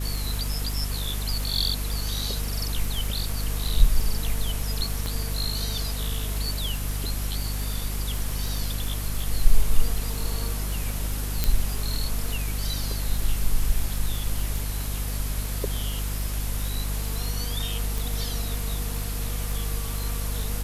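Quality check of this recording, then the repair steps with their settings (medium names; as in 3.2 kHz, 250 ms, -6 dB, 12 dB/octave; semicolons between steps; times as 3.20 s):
crackle 49 per s -30 dBFS
hum 50 Hz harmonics 5 -29 dBFS
5.06 s: pop -16 dBFS
11.44 s: pop
17.98 s: pop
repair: de-click; de-hum 50 Hz, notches 5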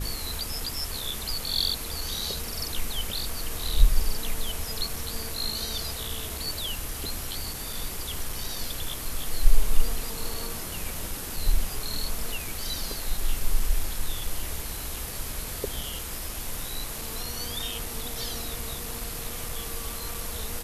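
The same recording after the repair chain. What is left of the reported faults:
nothing left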